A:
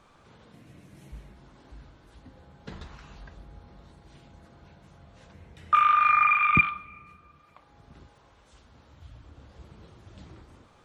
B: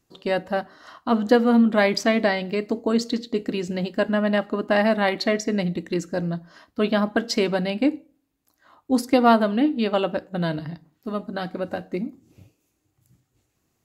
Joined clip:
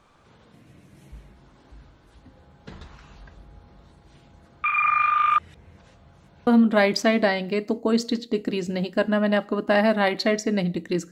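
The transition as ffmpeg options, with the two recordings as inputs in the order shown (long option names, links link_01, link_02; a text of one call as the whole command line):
ffmpeg -i cue0.wav -i cue1.wav -filter_complex "[0:a]apad=whole_dur=11.11,atrim=end=11.11,asplit=2[link_01][link_02];[link_01]atrim=end=4.642[link_03];[link_02]atrim=start=4.638:end=6.472,asetpts=PTS-STARTPTS,areverse[link_04];[1:a]atrim=start=1.478:end=6.12[link_05];[link_03][link_04]acrossfade=duration=0.004:curve1=hsin:curve2=hsin[link_06];[link_06][link_05]acrossfade=duration=0.004:curve1=hsin:curve2=hsin" out.wav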